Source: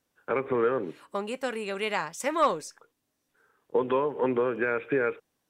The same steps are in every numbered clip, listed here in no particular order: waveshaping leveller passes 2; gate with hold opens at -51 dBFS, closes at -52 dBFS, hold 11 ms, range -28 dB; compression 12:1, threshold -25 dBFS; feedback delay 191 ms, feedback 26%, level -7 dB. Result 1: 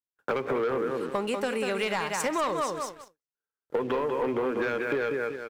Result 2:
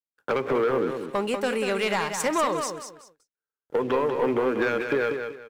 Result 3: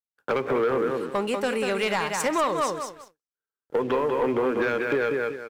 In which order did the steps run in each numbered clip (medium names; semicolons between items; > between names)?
feedback delay > gate with hold > waveshaping leveller > compression; compression > waveshaping leveller > feedback delay > gate with hold; feedback delay > compression > waveshaping leveller > gate with hold